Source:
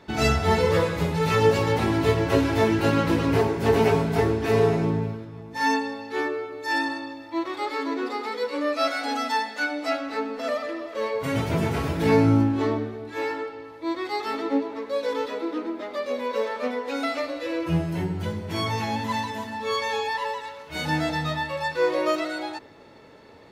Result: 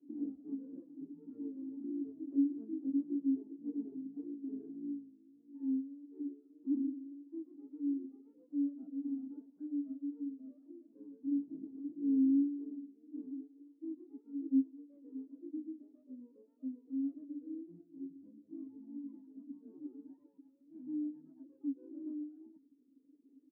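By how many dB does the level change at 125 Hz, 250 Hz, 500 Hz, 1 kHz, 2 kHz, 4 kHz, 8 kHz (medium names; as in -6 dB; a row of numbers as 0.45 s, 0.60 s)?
under -40 dB, -9.0 dB, -32.0 dB, under -40 dB, under -40 dB, under -40 dB, under -40 dB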